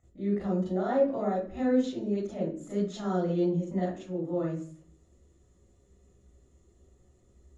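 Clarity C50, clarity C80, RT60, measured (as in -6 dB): 2.5 dB, 7.5 dB, 0.55 s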